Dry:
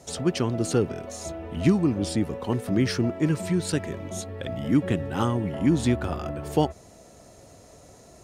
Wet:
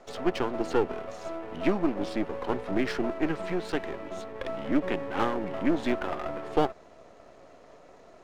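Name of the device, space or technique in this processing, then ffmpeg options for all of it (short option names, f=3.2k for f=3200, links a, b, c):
crystal radio: -af "highpass=320,lowpass=2.6k,aeval=exprs='if(lt(val(0),0),0.251*val(0),val(0))':c=same,volume=4dB"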